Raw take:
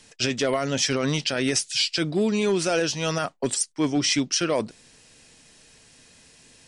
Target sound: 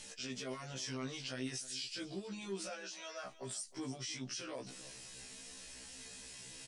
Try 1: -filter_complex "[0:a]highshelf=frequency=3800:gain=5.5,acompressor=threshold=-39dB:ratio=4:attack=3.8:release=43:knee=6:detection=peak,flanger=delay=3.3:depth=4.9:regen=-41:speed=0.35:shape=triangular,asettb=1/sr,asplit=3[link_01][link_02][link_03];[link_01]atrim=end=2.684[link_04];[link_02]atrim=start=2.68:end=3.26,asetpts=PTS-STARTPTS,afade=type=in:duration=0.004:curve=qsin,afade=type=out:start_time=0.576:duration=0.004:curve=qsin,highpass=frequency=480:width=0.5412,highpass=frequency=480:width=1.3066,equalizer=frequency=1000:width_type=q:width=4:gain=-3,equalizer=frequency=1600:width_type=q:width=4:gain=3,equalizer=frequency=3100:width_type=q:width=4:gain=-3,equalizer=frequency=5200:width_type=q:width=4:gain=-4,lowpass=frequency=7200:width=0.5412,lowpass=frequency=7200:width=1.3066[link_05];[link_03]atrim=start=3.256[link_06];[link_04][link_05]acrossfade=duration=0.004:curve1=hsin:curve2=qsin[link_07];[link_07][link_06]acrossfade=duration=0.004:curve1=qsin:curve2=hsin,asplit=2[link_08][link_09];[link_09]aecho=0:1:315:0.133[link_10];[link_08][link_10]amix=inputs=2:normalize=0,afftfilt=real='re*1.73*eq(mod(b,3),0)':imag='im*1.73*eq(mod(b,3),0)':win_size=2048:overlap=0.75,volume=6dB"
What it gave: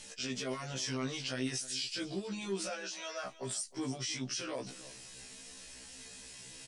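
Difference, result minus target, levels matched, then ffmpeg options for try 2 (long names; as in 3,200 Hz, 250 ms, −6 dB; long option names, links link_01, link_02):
downward compressor: peak gain reduction −5 dB
-filter_complex "[0:a]highshelf=frequency=3800:gain=5.5,acompressor=threshold=-46dB:ratio=4:attack=3.8:release=43:knee=6:detection=peak,flanger=delay=3.3:depth=4.9:regen=-41:speed=0.35:shape=triangular,asettb=1/sr,asplit=3[link_01][link_02][link_03];[link_01]atrim=end=2.684[link_04];[link_02]atrim=start=2.68:end=3.26,asetpts=PTS-STARTPTS,afade=type=in:duration=0.004:curve=qsin,afade=type=out:start_time=0.576:duration=0.004:curve=qsin,highpass=frequency=480:width=0.5412,highpass=frequency=480:width=1.3066,equalizer=frequency=1000:width_type=q:width=4:gain=-3,equalizer=frequency=1600:width_type=q:width=4:gain=3,equalizer=frequency=3100:width_type=q:width=4:gain=-3,equalizer=frequency=5200:width_type=q:width=4:gain=-4,lowpass=frequency=7200:width=0.5412,lowpass=frequency=7200:width=1.3066[link_05];[link_03]atrim=start=3.256[link_06];[link_04][link_05]acrossfade=duration=0.004:curve1=hsin:curve2=qsin[link_07];[link_07][link_06]acrossfade=duration=0.004:curve1=qsin:curve2=hsin,asplit=2[link_08][link_09];[link_09]aecho=0:1:315:0.133[link_10];[link_08][link_10]amix=inputs=2:normalize=0,afftfilt=real='re*1.73*eq(mod(b,3),0)':imag='im*1.73*eq(mod(b,3),0)':win_size=2048:overlap=0.75,volume=6dB"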